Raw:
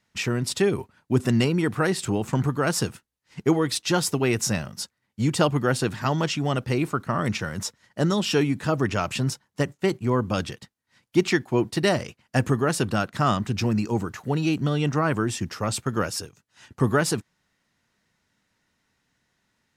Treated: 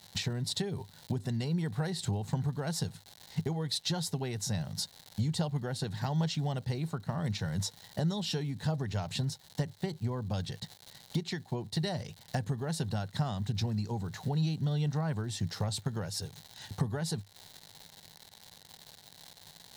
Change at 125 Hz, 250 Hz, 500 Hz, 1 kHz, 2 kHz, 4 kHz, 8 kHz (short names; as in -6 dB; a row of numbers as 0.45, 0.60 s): -5.5, -11.0, -14.5, -13.5, -15.5, -6.0, -9.5 dB